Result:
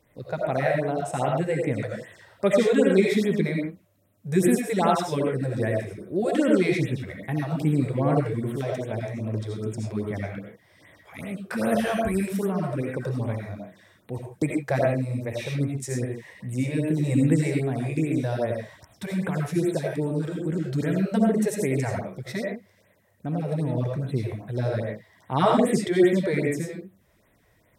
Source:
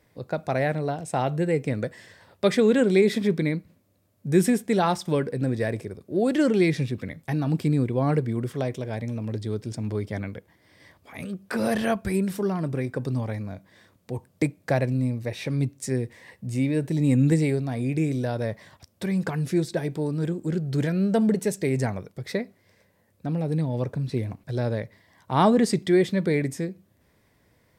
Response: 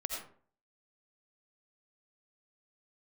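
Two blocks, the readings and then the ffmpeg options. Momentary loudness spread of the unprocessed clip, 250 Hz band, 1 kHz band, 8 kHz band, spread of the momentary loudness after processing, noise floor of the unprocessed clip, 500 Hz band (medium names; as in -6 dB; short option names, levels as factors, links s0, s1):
13 LU, -0.5 dB, +1.0 dB, +0.5 dB, 13 LU, -65 dBFS, +1.0 dB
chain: -filter_complex "[0:a]equalizer=f=4600:w=6.6:g=-6.5[s0];[1:a]atrim=start_sample=2205,afade=t=out:st=0.22:d=0.01,atrim=end_sample=10143[s1];[s0][s1]afir=irnorm=-1:irlink=0,afftfilt=real='re*(1-between(b*sr/1024,210*pow(6000/210,0.5+0.5*sin(2*PI*2.5*pts/sr))/1.41,210*pow(6000/210,0.5+0.5*sin(2*PI*2.5*pts/sr))*1.41))':imag='im*(1-between(b*sr/1024,210*pow(6000/210,0.5+0.5*sin(2*PI*2.5*pts/sr))/1.41,210*pow(6000/210,0.5+0.5*sin(2*PI*2.5*pts/sr))*1.41))':win_size=1024:overlap=0.75"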